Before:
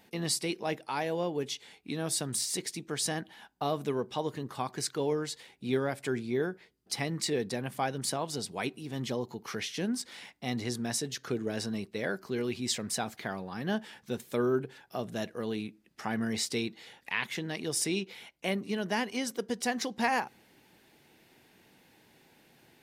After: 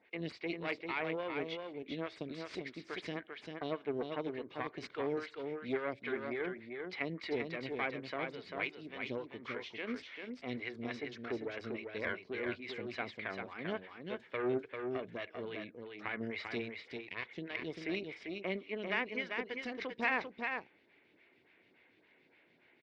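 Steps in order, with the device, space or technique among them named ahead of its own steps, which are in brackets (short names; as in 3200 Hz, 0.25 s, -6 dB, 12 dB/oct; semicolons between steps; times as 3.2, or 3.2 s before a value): vibe pedal into a guitar amplifier (photocell phaser 3.5 Hz; tube stage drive 25 dB, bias 0.8; speaker cabinet 80–3700 Hz, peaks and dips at 140 Hz -9 dB, 210 Hz -7 dB, 820 Hz -8 dB, 2200 Hz +10 dB); 16.6–17.55 dynamic EQ 2200 Hz, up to -7 dB, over -49 dBFS, Q 0.71; echo 0.394 s -5 dB; gain +1 dB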